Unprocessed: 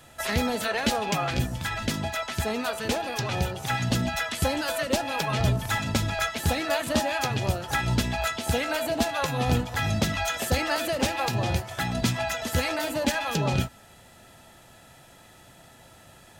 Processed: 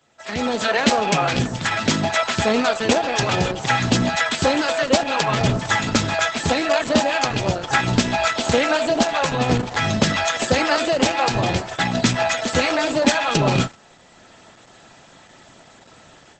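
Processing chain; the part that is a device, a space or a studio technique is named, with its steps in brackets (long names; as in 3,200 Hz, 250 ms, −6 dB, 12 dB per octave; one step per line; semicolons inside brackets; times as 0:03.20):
0:01.49–0:02.35: high-pass filter 80 Hz 24 dB per octave
video call (high-pass filter 150 Hz 12 dB per octave; automatic gain control gain up to 15 dB; noise gate −28 dBFS, range −7 dB; level −1 dB; Opus 12 kbit/s 48,000 Hz)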